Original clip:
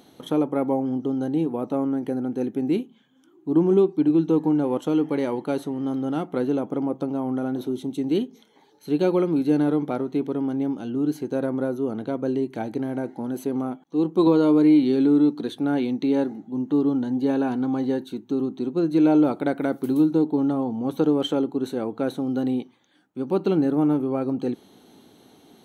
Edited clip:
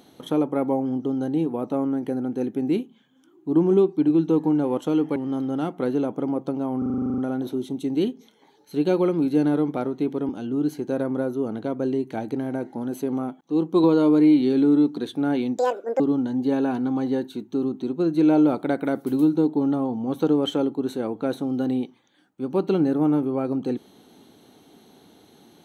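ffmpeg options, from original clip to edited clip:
-filter_complex "[0:a]asplit=15[s0][s1][s2][s3][s4][s5][s6][s7][s8][s9][s10][s11][s12][s13][s14];[s0]atrim=end=5.162[s15];[s1]atrim=start=5.698:end=7.362[s16];[s2]atrim=start=7.318:end=7.362[s17];[s3]atrim=start=7.318:end=7.362[s18];[s4]atrim=start=7.318:end=7.362[s19];[s5]atrim=start=7.318:end=7.362[s20];[s6]atrim=start=7.318:end=7.362[s21];[s7]atrim=start=7.318:end=7.362[s22];[s8]atrim=start=7.318:end=7.362[s23];[s9]atrim=start=7.318:end=7.362[s24];[s10]atrim=start=7.318:end=7.362[s25];[s11]atrim=start=7.318:end=10.432[s26];[s12]atrim=start=10.718:end=16.014[s27];[s13]atrim=start=16.01:end=16.77,asetpts=PTS-STARTPTS,asetrate=79821,aresample=44100,atrim=end_sample=18517,asetpts=PTS-STARTPTS[s28];[s14]atrim=start=16.766[s29];[s15][s16]acrossfade=d=0.004:c1=hsin:c2=hsin[s30];[s30][s17]acrossfade=d=0.004:c1=hsin:c2=hsin[s31];[s31][s18]acrossfade=d=0.004:c1=hsin:c2=hsin[s32];[s32][s19]acrossfade=d=0.004:c1=hsin:c2=hsin[s33];[s33][s20]acrossfade=d=0.004:c1=hsin:c2=hsin[s34];[s34][s21]acrossfade=d=0.004:c1=hsin:c2=hsin[s35];[s35][s22]acrossfade=d=0.004:c1=hsin:c2=hsin[s36];[s36][s23]acrossfade=d=0.004:c1=hsin:c2=hsin[s37];[s37][s24]acrossfade=d=0.004:c1=hsin:c2=hsin[s38];[s38][s25]acrossfade=d=0.004:c1=hsin:c2=hsin[s39];[s39][s26]acrossfade=d=0.004:c1=hsin:c2=hsin[s40];[s40][s27]acrossfade=d=0.004:c1=hsin:c2=hsin[s41];[s41][s28]acrossfade=d=0.004:c1=hsin:c2=hsin[s42];[s42][s29]acrossfade=d=0.004:c1=hsin:c2=hsin"

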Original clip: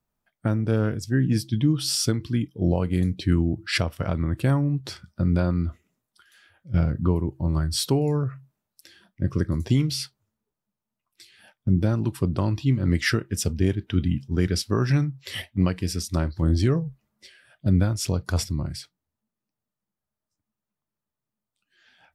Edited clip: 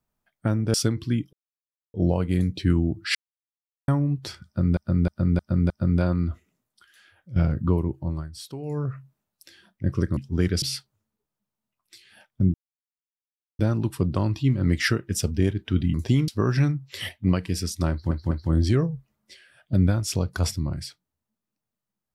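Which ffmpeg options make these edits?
-filter_complex "[0:a]asplit=18[s0][s1][s2][s3][s4][s5][s6][s7][s8][s9][s10][s11][s12][s13][s14][s15][s16][s17];[s0]atrim=end=0.742[s18];[s1]atrim=start=1.968:end=2.56,asetpts=PTS-STARTPTS,afade=t=out:st=0.588:d=0.004:c=hsin,apad=pad_dur=0.61[s19];[s2]atrim=start=2.56:end=3.77,asetpts=PTS-STARTPTS,afade=t=in:d=0.004:c=hsin,afade=t=out:st=1.206:d=0.004:c=hsin[s20];[s3]atrim=start=3.77:end=4.5,asetpts=PTS-STARTPTS,volume=0[s21];[s4]atrim=start=4.5:end=5.392,asetpts=PTS-STARTPTS,afade=t=in:d=0.004:c=hsin[s22];[s5]atrim=start=5.078:end=5.392[s23];[s6]atrim=start=5.078:end=5.392[s24];[s7]atrim=start=5.078:end=5.392[s25];[s8]atrim=start=5.078:end=7.67,asetpts=PTS-STARTPTS,afade=t=out:st=2.232:d=0.36:silence=0.188365[s26];[s9]atrim=start=7.67:end=7.97,asetpts=PTS-STARTPTS,volume=0.188[s27];[s10]atrim=start=7.97:end=9.552,asetpts=PTS-STARTPTS,afade=t=in:d=0.36:silence=0.188365[s28];[s11]atrim=start=14.158:end=14.612[s29];[s12]atrim=start=9.888:end=11.81,asetpts=PTS-STARTPTS,afade=t=out:st=1.918:d=0.004:c=hsin,apad=pad_dur=1.05[s30];[s13]atrim=start=11.81:end=14.162,asetpts=PTS-STARTPTS,afade=t=in:d=0.004:c=hsin[s31];[s14]atrim=start=9.548:end=9.892[s32];[s15]atrim=start=14.608:end=16.442[s33];[s16]atrim=start=16.238:end=16.442[s34];[s17]atrim=start=16.238[s35];[s19][s20][s21][s22]concat=n=4:v=0:a=1[s36];[s18][s36]acrossfade=d=0.004:c1=hsin:c2=hsin[s37];[s37][s23]acrossfade=d=0.004:c1=hsin:c2=hsin[s38];[s38][s24]acrossfade=d=0.004:c1=hsin:c2=hsin[s39];[s39][s25]acrossfade=d=0.004:c1=hsin:c2=hsin[s40];[s26][s27][s28]concat=n=3:v=0:a=1[s41];[s40][s41]acrossfade=d=0.004:c1=hsin:c2=hsin[s42];[s42][s29]acrossfade=d=0.004:c1=hsin:c2=hsin[s43];[s30][s31]concat=n=2:v=0:a=1[s44];[s43][s44]acrossfade=d=0.004:c1=hsin:c2=hsin[s45];[s45][s32]acrossfade=d=0.004:c1=hsin:c2=hsin[s46];[s46][s33]acrossfade=d=0.004:c1=hsin:c2=hsin[s47];[s47][s34]acrossfade=d=0.004:c1=hsin:c2=hsin[s48];[s48][s35]acrossfade=d=0.004:c1=hsin:c2=hsin"

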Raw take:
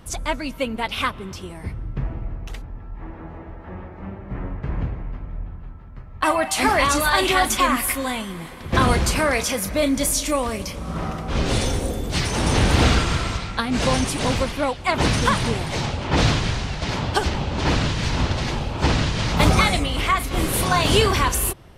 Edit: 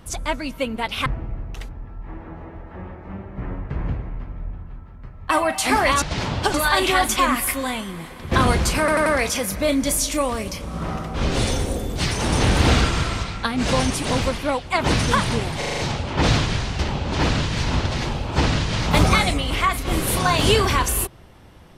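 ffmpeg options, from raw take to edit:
-filter_complex "[0:a]asplit=13[s0][s1][s2][s3][s4][s5][s6][s7][s8][s9][s10][s11][s12];[s0]atrim=end=1.062[s13];[s1]atrim=start=1.988:end=6.952[s14];[s2]atrim=start=16.728:end=17.252[s15];[s3]atrim=start=6.948:end=9.292[s16];[s4]atrim=start=9.198:end=9.292[s17];[s5]atrim=start=9.198:end=9.292[s18];[s6]atrim=start=9.198:end=15.762[s19];[s7]atrim=start=15.718:end=15.762[s20];[s8]atrim=start=15.718:end=15.762[s21];[s9]atrim=start=15.718:end=15.762[s22];[s10]atrim=start=15.718:end=15.762[s23];[s11]atrim=start=15.718:end=16.732[s24];[s12]atrim=start=17.248[s25];[s13][s14]acrossfade=d=0.004:c1=hsin:c2=hsin[s26];[s26][s15]acrossfade=d=0.004:c1=hsin:c2=hsin[s27];[s27][s16]acrossfade=d=0.004:c1=hsin:c2=hsin[s28];[s28][s17]acrossfade=d=0.004:c1=hsin:c2=hsin[s29];[s29][s18]acrossfade=d=0.004:c1=hsin:c2=hsin[s30];[s30][s19]acrossfade=d=0.004:c1=hsin:c2=hsin[s31];[s31][s20]acrossfade=d=0.004:c1=hsin:c2=hsin[s32];[s32][s21]acrossfade=d=0.004:c1=hsin:c2=hsin[s33];[s33][s22]acrossfade=d=0.004:c1=hsin:c2=hsin[s34];[s34][s23]acrossfade=d=0.004:c1=hsin:c2=hsin[s35];[s35][s24]acrossfade=d=0.004:c1=hsin:c2=hsin[s36];[s36][s25]acrossfade=d=0.004:c1=hsin:c2=hsin"

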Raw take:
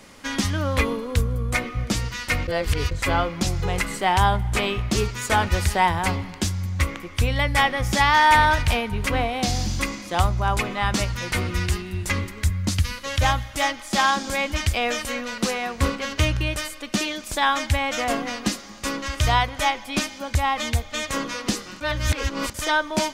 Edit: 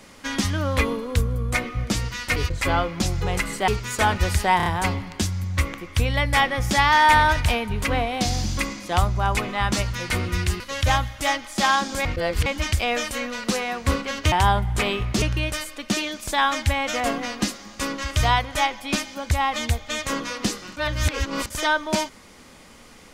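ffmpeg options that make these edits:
-filter_complex "[0:a]asplit=11[s0][s1][s2][s3][s4][s5][s6][s7][s8][s9][s10];[s0]atrim=end=2.362[s11];[s1]atrim=start=2.768:end=4.092[s12];[s2]atrim=start=4.988:end=5.912[s13];[s3]atrim=start=5.878:end=5.912[s14];[s4]atrim=start=5.878:end=5.912[s15];[s5]atrim=start=5.878:end=11.822[s16];[s6]atrim=start=12.948:end=14.402[s17];[s7]atrim=start=2.358:end=2.772[s18];[s8]atrim=start=14.398:end=16.262[s19];[s9]atrim=start=4.088:end=4.992[s20];[s10]atrim=start=16.258[s21];[s11][s12]acrossfade=d=0.004:c1=hsin:c2=hsin[s22];[s22][s13]acrossfade=d=0.004:c1=hsin:c2=hsin[s23];[s23][s14]acrossfade=d=0.004:c1=hsin:c2=hsin[s24];[s24][s15]acrossfade=d=0.004:c1=hsin:c2=hsin[s25];[s25][s16]acrossfade=d=0.004:c1=hsin:c2=hsin[s26];[s26][s17]acrossfade=d=0.004:c1=hsin:c2=hsin[s27];[s27][s18]acrossfade=d=0.004:c1=hsin:c2=hsin[s28];[s28][s19]acrossfade=d=0.004:c1=hsin:c2=hsin[s29];[s29][s20]acrossfade=d=0.004:c1=hsin:c2=hsin[s30];[s30][s21]acrossfade=d=0.004:c1=hsin:c2=hsin"

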